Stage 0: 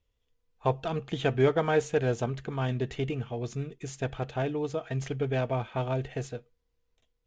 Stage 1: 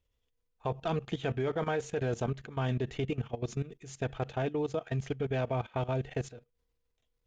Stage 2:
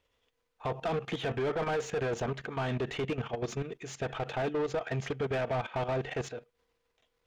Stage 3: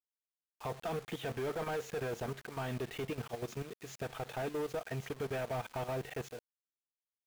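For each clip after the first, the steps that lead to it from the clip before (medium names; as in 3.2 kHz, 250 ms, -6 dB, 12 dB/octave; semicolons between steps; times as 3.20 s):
level held to a coarse grid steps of 16 dB; trim +2 dB
peak limiter -24 dBFS, peak gain reduction 5.5 dB; overdrive pedal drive 21 dB, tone 2 kHz, clips at -24 dBFS
companding laws mixed up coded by A; recorder AGC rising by 18 dB/s; word length cut 8-bit, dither none; trim -4.5 dB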